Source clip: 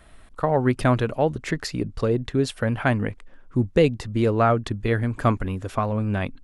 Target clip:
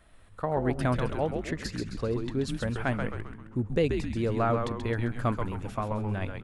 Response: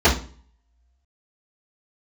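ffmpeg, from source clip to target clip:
-filter_complex "[0:a]asplit=7[link_01][link_02][link_03][link_04][link_05][link_06][link_07];[link_02]adelay=132,afreqshift=-110,volume=-5dB[link_08];[link_03]adelay=264,afreqshift=-220,volume=-11.2dB[link_09];[link_04]adelay=396,afreqshift=-330,volume=-17.4dB[link_10];[link_05]adelay=528,afreqshift=-440,volume=-23.6dB[link_11];[link_06]adelay=660,afreqshift=-550,volume=-29.8dB[link_12];[link_07]adelay=792,afreqshift=-660,volume=-36dB[link_13];[link_01][link_08][link_09][link_10][link_11][link_12][link_13]amix=inputs=7:normalize=0,volume=-8dB"

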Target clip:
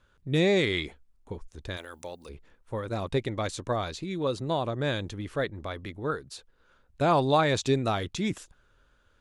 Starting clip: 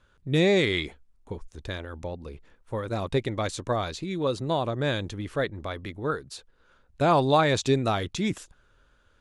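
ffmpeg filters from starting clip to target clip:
ffmpeg -i in.wav -filter_complex "[0:a]asplit=3[link_01][link_02][link_03];[link_01]afade=type=out:start_time=1.76:duration=0.02[link_04];[link_02]aemphasis=mode=production:type=riaa,afade=type=in:start_time=1.76:duration=0.02,afade=type=out:start_time=2.28:duration=0.02[link_05];[link_03]afade=type=in:start_time=2.28:duration=0.02[link_06];[link_04][link_05][link_06]amix=inputs=3:normalize=0,volume=-2dB" out.wav

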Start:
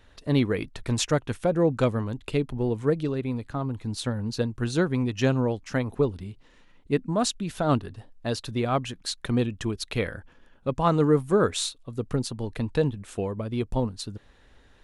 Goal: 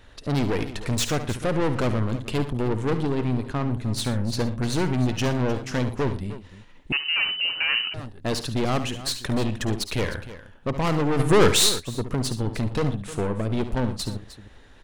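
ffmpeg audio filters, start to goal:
ffmpeg -i in.wav -filter_complex "[0:a]aeval=exprs='(tanh(28.2*val(0)+0.55)-tanh(0.55))/28.2':channel_layout=same,aecho=1:1:55|56|71|118|307:0.126|0.119|0.251|0.119|0.178,asettb=1/sr,asplit=3[link_01][link_02][link_03];[link_01]atrim=end=6.924[link_04];[link_02]atrim=start=6.92:end=7.94,asetpts=PTS-STARTPTS,afade=type=in:duration=0.004:curve=qsin,afade=type=out:start_time=1.016:duration=0.004:curve=qsin,lowpass=frequency=2600:width_type=q:width=0.5098,lowpass=frequency=2600:width_type=q:width=0.6013,lowpass=frequency=2600:width_type=q:width=0.9,lowpass=frequency=2600:width_type=q:width=2.563,afreqshift=-3000[link_05];[link_03]atrim=start=7.936[link_06];[link_04][link_05]acrossfade=duration=0.004:curve1=hsin:curve2=qsin[link_07];[link_07][link_06]acrossfade=duration=0.004:curve1=qsin:curve2=hsin,asettb=1/sr,asplit=3[link_08][link_09][link_10];[link_08]atrim=end=11.194[link_11];[link_09]atrim=start=11.19:end=11.8,asetpts=PTS-STARTPTS,afade=type=in:duration=0.004:curve=qsin,afade=type=out:start_time=0.606:duration=0.004:curve=qsin,acontrast=81[link_12];[link_10]atrim=start=11.796[link_13];[link_11][link_12]acrossfade=duration=0.004:curve1=hsin:curve2=qsin[link_14];[link_14][link_13]acrossfade=duration=0.004:curve1=qsin:curve2=hsin,volume=8dB" out.wav

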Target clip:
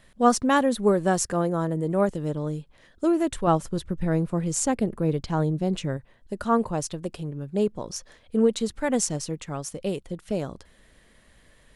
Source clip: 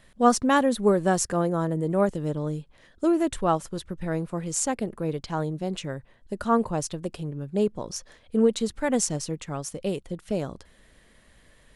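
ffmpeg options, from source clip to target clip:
ffmpeg -i in.wav -filter_complex "[0:a]asettb=1/sr,asplit=3[link_01][link_02][link_03];[link_01]atrim=end=3.474[link_04];[link_02]atrim=start=3.47:end=5.97,asetpts=PTS-STARTPTS,afade=type=in:duration=0.004:curve=qsin,afade=type=out:start_time=2.496:duration=0.004:curve=qsin,lowshelf=frequency=390:gain=7[link_05];[link_03]atrim=start=5.966[link_06];[link_04][link_05]acrossfade=duration=0.004:curve1=hsin:curve2=qsin[link_07];[link_07][link_06]acrossfade=duration=0.004:curve1=qsin:curve2=hsin" out.wav

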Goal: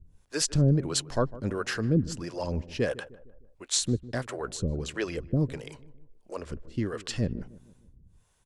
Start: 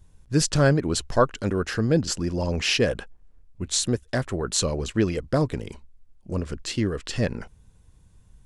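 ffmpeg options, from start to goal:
ffmpeg -i in.wav -filter_complex "[0:a]acrossover=split=410[link_01][link_02];[link_01]aeval=exprs='val(0)*(1-1/2+1/2*cos(2*PI*1.5*n/s))':channel_layout=same[link_03];[link_02]aeval=exprs='val(0)*(1-1/2-1/2*cos(2*PI*1.5*n/s))':channel_layout=same[link_04];[link_03][link_04]amix=inputs=2:normalize=0,asplit=2[link_05][link_06];[link_06]adelay=153,lowpass=frequency=1000:poles=1,volume=-17dB,asplit=2[link_07][link_08];[link_08]adelay=153,lowpass=frequency=1000:poles=1,volume=0.5,asplit=2[link_09][link_10];[link_10]adelay=153,lowpass=frequency=1000:poles=1,volume=0.5,asplit=2[link_11][link_12];[link_12]adelay=153,lowpass=frequency=1000:poles=1,volume=0.5[link_13];[link_07][link_09][link_11][link_13]amix=inputs=4:normalize=0[link_14];[link_05][link_14]amix=inputs=2:normalize=0" out.wav

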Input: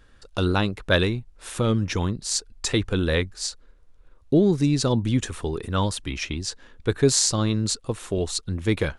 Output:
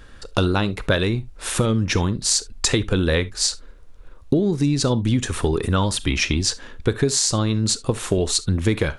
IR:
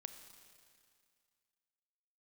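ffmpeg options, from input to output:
-filter_complex "[0:a]acompressor=threshold=-26dB:ratio=12,asplit=2[link_01][link_02];[1:a]atrim=start_sample=2205,atrim=end_sample=3528[link_03];[link_02][link_03]afir=irnorm=-1:irlink=0,volume=11dB[link_04];[link_01][link_04]amix=inputs=2:normalize=0,volume=1dB"

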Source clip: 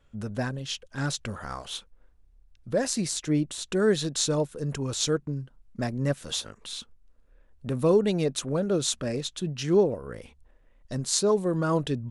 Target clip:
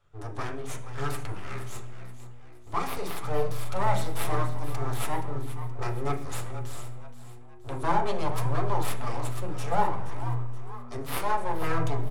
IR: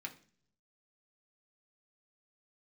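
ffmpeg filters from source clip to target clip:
-filter_complex "[0:a]aeval=exprs='abs(val(0))':channel_layout=same,asplit=3[link_01][link_02][link_03];[link_01]afade=type=out:start_time=3.33:duration=0.02[link_04];[link_02]asplit=2[link_05][link_06];[link_06]adelay=43,volume=-5dB[link_07];[link_05][link_07]amix=inputs=2:normalize=0,afade=type=in:start_time=3.33:duration=0.02,afade=type=out:start_time=3.76:duration=0.02[link_08];[link_03]afade=type=in:start_time=3.76:duration=0.02[link_09];[link_04][link_08][link_09]amix=inputs=3:normalize=0,asplit=5[link_10][link_11][link_12][link_13][link_14];[link_11]adelay=474,afreqshift=120,volume=-13dB[link_15];[link_12]adelay=948,afreqshift=240,volume=-20.3dB[link_16];[link_13]adelay=1422,afreqshift=360,volume=-27.7dB[link_17];[link_14]adelay=1896,afreqshift=480,volume=-35dB[link_18];[link_10][link_15][link_16][link_17][link_18]amix=inputs=5:normalize=0[link_19];[1:a]atrim=start_sample=2205,asetrate=22932,aresample=44100[link_20];[link_19][link_20]afir=irnorm=-1:irlink=0,volume=-2.5dB"

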